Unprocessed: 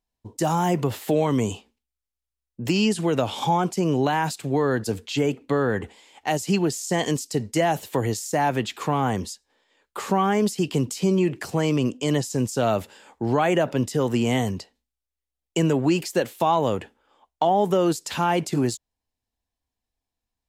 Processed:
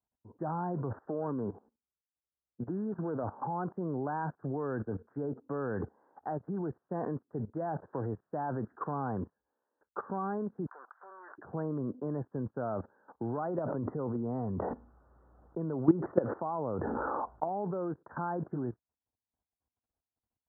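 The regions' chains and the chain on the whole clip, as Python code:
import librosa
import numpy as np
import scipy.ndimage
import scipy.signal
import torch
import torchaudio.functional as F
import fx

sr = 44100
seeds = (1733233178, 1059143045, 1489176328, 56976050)

y = fx.chain(x, sr, fx.lowpass(hz=1400.0, slope=6),
    fx.low_shelf(hz=100.0, db=-11.0),
    fx.running_max(window=5), at=(1.05, 3.24))
y = fx.chain(y, sr, fx.law_mismatch(coded='A'),
    fx.highpass(hz=770.0, slope=24),
    fx.peak_eq(hz=1500.0, db=14.5, octaves=1.4), at=(10.66, 11.38))
y = fx.chain(y, sr, fx.notch(hz=1600.0, q=7.8),
    fx.resample_bad(factor=8, down='filtered', up='hold'),
    fx.env_flatten(amount_pct=70), at=(13.37, 17.49))
y = scipy.signal.sosfilt(scipy.signal.butter(16, 1600.0, 'lowpass', fs=sr, output='sos'), y)
y = fx.level_steps(y, sr, step_db=17)
y = scipy.signal.sosfilt(scipy.signal.butter(2, 73.0, 'highpass', fs=sr, output='sos'), y)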